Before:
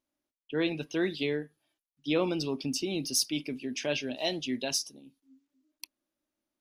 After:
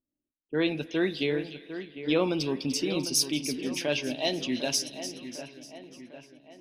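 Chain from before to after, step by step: level-controlled noise filter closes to 310 Hz, open at -30 dBFS; two-band feedback delay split 2.6 kHz, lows 751 ms, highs 297 ms, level -11 dB; spring tank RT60 3.1 s, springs 51 ms, chirp 30 ms, DRR 19.5 dB; trim +2.5 dB

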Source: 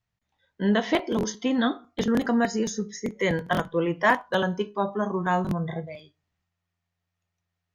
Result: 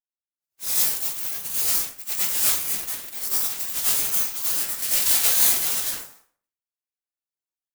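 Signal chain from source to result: spectral contrast reduction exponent 0.16; 4.82–5.94 s: waveshaping leveller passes 3; frequency shift -15 Hz; hum notches 50/100/150/200/250 Hz; spectral gate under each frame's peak -15 dB weak; level rider gain up to 13.5 dB; plate-style reverb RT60 0.5 s, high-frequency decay 0.65×, pre-delay 80 ms, DRR -7.5 dB; ring modulator with a swept carrier 800 Hz, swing 75%, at 0.72 Hz; trim -7 dB

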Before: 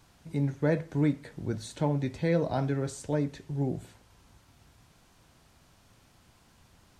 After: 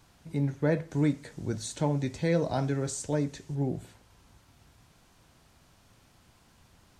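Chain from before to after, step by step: 0.91–3.55 s: peaking EQ 6.9 kHz +8.5 dB 1.1 oct

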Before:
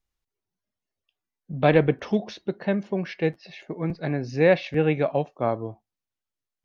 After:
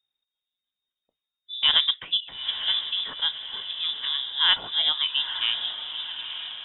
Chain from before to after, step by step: formant shift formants +2 st; echo that smears into a reverb 915 ms, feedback 51%, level -8.5 dB; frequency inversion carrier 3.7 kHz; trim -2.5 dB

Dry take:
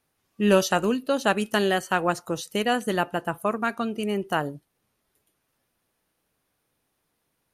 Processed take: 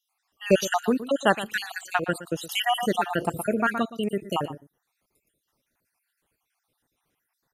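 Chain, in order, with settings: random holes in the spectrogram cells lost 59%; on a send: delay 118 ms -14.5 dB; 2.49–3.83 s: on the sum: level flattener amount 50%; trim +2 dB

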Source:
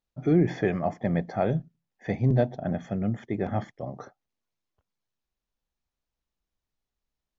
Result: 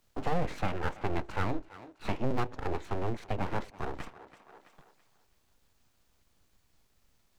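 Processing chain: full-wave rectifier; formant shift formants +2 st; thinning echo 331 ms, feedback 31%, high-pass 280 Hz, level -20.5 dB; three bands compressed up and down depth 70%; trim -3.5 dB

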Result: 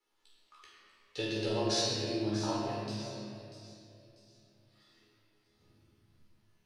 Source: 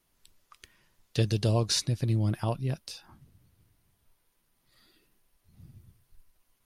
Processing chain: three-band isolator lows -17 dB, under 240 Hz, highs -15 dB, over 7.2 kHz; chord resonator C#2 minor, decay 0.55 s; feedback echo behind a high-pass 641 ms, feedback 37%, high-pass 4.8 kHz, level -8 dB; reverberation RT60 2.7 s, pre-delay 16 ms, DRR -4 dB; trim +6.5 dB

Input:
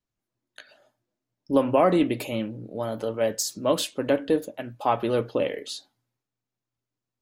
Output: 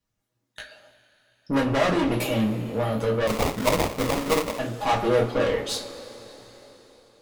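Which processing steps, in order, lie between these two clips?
valve stage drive 28 dB, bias 0.6; two-slope reverb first 0.23 s, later 4.2 s, from -22 dB, DRR -2.5 dB; 3.27–4.59 s: sample-rate reducer 1.6 kHz, jitter 20%; trim +5.5 dB

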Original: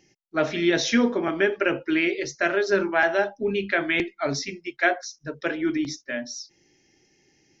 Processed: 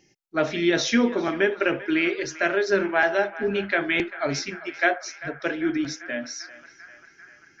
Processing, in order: band-passed feedback delay 394 ms, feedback 77%, band-pass 1.5 kHz, level -14.5 dB

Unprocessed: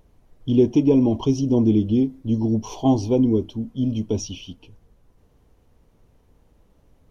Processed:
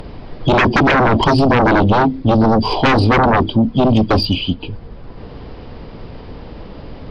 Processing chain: knee-point frequency compression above 3.3 kHz 1.5:1; resampled via 11.025 kHz; sine folder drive 16 dB, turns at -6 dBFS; three bands compressed up and down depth 40%; trim -2.5 dB

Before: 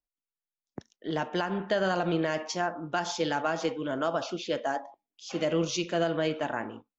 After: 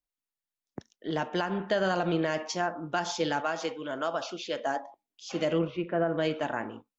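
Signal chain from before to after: 3.40–4.59 s: bass shelf 340 Hz -9.5 dB; 5.58–6.17 s: low-pass 2.5 kHz -> 1.6 kHz 24 dB/octave

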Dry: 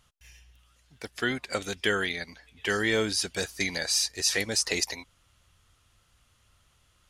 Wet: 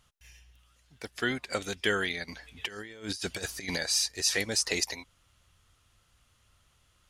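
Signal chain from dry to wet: 2.28–3.76 s: compressor with a negative ratio -34 dBFS, ratio -0.5; trim -1.5 dB

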